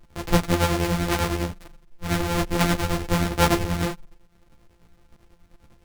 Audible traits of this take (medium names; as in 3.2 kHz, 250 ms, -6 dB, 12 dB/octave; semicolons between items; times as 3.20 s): a buzz of ramps at a fixed pitch in blocks of 256 samples; tremolo triangle 10 Hz, depth 65%; a shimmering, thickened sound